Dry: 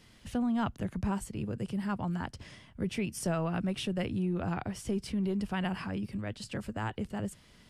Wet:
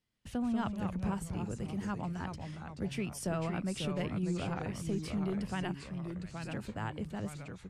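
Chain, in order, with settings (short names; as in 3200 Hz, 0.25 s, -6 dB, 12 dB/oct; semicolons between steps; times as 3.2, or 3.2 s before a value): gate -50 dBFS, range -23 dB; 5.71–6.51 passive tone stack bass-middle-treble 5-5-5; echoes that change speed 0.145 s, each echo -2 st, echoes 3, each echo -6 dB; gain -3.5 dB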